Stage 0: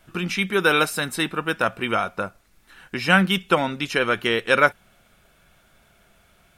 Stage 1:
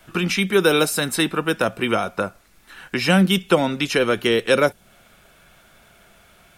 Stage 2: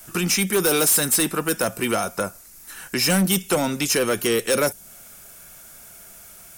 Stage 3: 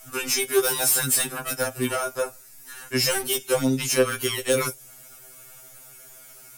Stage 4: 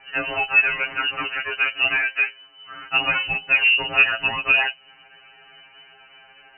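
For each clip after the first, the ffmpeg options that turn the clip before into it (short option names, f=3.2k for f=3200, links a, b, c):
-filter_complex "[0:a]lowshelf=f=170:g=-4.5,acrossover=split=400|600|3800[a][b][c][d];[c]acompressor=threshold=-30dB:ratio=6[e];[a][b][e][d]amix=inputs=4:normalize=0,volume=6.5dB"
-af "aexciter=amount=6.6:drive=3.4:freq=5.1k,asoftclip=type=tanh:threshold=-14.5dB"
-af "afftfilt=real='re*2.45*eq(mod(b,6),0)':imag='im*2.45*eq(mod(b,6),0)':win_size=2048:overlap=0.75"
-af "asoftclip=type=tanh:threshold=-13dB,lowpass=f=2.6k:t=q:w=0.5098,lowpass=f=2.6k:t=q:w=0.6013,lowpass=f=2.6k:t=q:w=0.9,lowpass=f=2.6k:t=q:w=2.563,afreqshift=-3000,volume=6dB"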